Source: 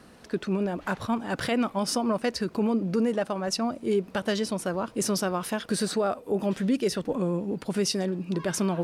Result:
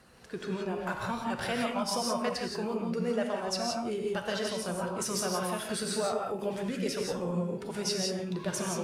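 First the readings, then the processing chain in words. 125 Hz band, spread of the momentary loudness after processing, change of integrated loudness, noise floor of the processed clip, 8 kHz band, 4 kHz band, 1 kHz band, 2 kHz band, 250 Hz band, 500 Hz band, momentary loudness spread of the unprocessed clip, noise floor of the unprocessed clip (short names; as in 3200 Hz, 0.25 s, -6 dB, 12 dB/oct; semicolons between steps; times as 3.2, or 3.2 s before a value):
-5.0 dB, 4 LU, -4.5 dB, -42 dBFS, -1.5 dB, -1.5 dB, -2.0 dB, -2.5 dB, -7.5 dB, -4.5 dB, 4 LU, -51 dBFS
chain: bin magnitudes rounded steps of 15 dB; bell 270 Hz -10 dB 0.94 oct; resonator 120 Hz, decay 0.53 s, harmonics all, mix 60%; non-linear reverb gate 0.2 s rising, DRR 0 dB; gain +2.5 dB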